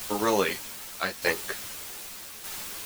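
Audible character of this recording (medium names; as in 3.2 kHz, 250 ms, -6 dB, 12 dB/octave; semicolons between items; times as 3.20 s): a quantiser's noise floor 6-bit, dither triangular; tremolo saw down 0.82 Hz, depth 55%; a shimmering, thickened sound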